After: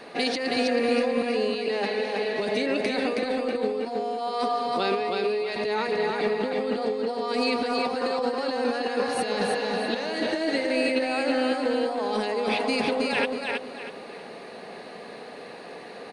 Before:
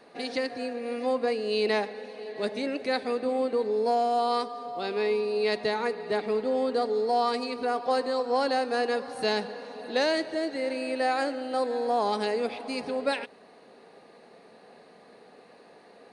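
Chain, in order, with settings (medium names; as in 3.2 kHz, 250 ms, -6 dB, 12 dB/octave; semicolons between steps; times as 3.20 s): peaking EQ 2.6 kHz +4 dB 1.3 oct; compressor with a negative ratio -33 dBFS, ratio -1; feedback delay 321 ms, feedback 31%, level -3.5 dB; trim +5 dB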